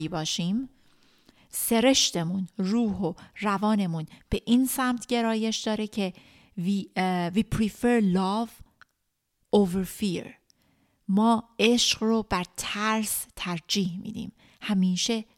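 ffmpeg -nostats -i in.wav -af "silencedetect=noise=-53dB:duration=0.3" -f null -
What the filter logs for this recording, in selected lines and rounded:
silence_start: 8.83
silence_end: 9.52 | silence_duration: 0.69
silence_start: 10.62
silence_end: 11.08 | silence_duration: 0.46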